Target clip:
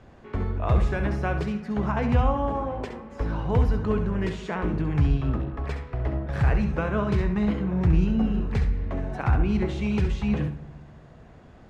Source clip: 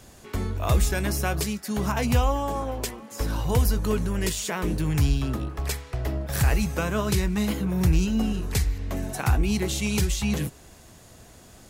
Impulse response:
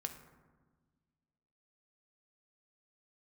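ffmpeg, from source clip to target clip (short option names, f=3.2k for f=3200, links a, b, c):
-filter_complex "[0:a]lowpass=1.9k,asplit=2[a][b];[1:a]atrim=start_sample=2205,adelay=67[c];[b][c]afir=irnorm=-1:irlink=0,volume=-6dB[d];[a][d]amix=inputs=2:normalize=0"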